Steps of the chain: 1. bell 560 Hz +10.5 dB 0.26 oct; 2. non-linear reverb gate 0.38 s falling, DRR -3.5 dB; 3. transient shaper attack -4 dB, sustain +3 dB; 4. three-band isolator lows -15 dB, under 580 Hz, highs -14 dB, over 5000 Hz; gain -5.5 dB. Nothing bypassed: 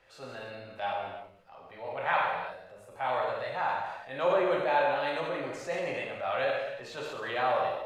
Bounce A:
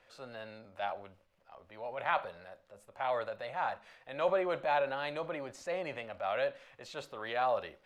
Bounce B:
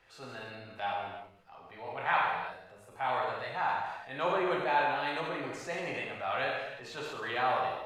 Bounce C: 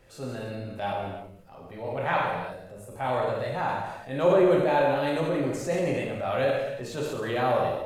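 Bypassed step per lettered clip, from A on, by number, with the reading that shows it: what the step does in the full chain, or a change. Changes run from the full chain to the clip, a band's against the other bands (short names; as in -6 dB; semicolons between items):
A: 2, crest factor change +2.5 dB; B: 1, 500 Hz band -5.0 dB; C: 4, loudness change +4.0 LU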